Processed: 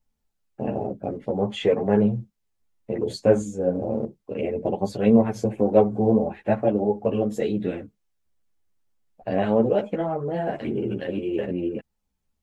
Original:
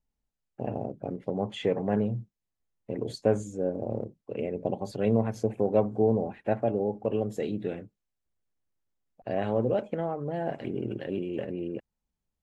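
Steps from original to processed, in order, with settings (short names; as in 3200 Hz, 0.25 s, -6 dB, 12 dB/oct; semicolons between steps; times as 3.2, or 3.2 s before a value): ensemble effect; gain +9 dB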